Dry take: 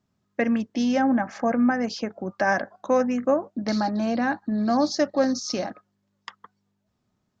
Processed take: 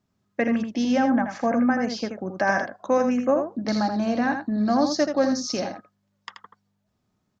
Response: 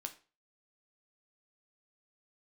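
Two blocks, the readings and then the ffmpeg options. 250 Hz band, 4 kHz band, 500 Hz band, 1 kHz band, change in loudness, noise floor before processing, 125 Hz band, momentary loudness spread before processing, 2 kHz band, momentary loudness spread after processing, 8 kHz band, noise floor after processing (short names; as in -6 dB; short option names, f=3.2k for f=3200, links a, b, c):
+0.5 dB, +1.0 dB, +0.5 dB, +0.5 dB, +0.5 dB, -75 dBFS, +1.0 dB, 7 LU, +0.5 dB, 9 LU, n/a, -74 dBFS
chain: -af "aecho=1:1:81:0.447"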